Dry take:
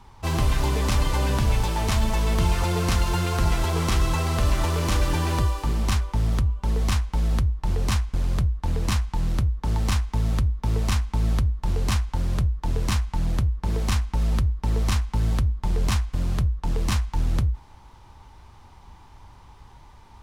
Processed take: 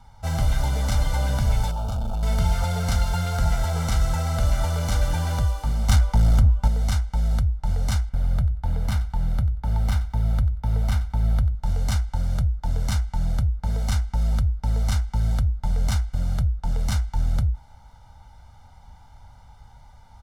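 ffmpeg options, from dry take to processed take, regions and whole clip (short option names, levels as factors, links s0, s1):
-filter_complex "[0:a]asettb=1/sr,asplit=3[s0][s1][s2];[s0]atrim=end=1.714[s3];[s1]atrim=start=1.71:end=2.23,asetpts=PTS-STARTPTS,afade=t=in:d=0.004:c=qsin,afade=t=out:st=0.516:d=0.004:c=qsin,equalizer=f=8000:w=0.3:g=-10,asoftclip=type=hard:threshold=0.0668,asuperstop=centerf=1900:order=4:qfactor=1.6[s4];[s2]atrim=start=2.226[s5];[s3][s4]acrossfade=d=0.004:c1=hsin:c2=qsin[s6];[s6][s5]acrossfade=d=0.004:c1=qsin:c2=hsin,asettb=1/sr,asplit=3[s7][s8][s9];[s7]atrim=end=5.894[s10];[s8]atrim=start=5.89:end=6.68,asetpts=PTS-STARTPTS,afade=t=in:d=0.004:c=qsin,afade=t=out:st=0.786:d=0.004:c=qsin,acontrast=75,aeval=exprs='clip(val(0),-1,0.211)':c=same[s11];[s9]atrim=start=6.676[s12];[s10][s11]acrossfade=d=0.004:c1=hsin:c2=qsin[s13];[s13][s12]acrossfade=d=0.004:c1=qsin:c2=hsin,asettb=1/sr,asplit=3[s14][s15][s16];[s14]atrim=end=8.094[s17];[s15]atrim=start=8.09:end=11.55,asetpts=PTS-STARTPTS,afade=t=in:d=0.004:c=qsin,afade=t=out:st=3.456:d=0.004:c=qsin,equalizer=f=6700:w=0.83:g=-8,aecho=1:1:92|184:0.141|0.0254,atrim=end_sample=152586[s18];[s16]atrim=start=11.546[s19];[s17][s18]acrossfade=d=0.004:c1=hsin:c2=qsin[s20];[s20][s19]acrossfade=d=0.004:c1=qsin:c2=hsin,equalizer=f=2600:t=o:w=0.35:g=-8.5,aecho=1:1:1.4:0.91,volume=0.596"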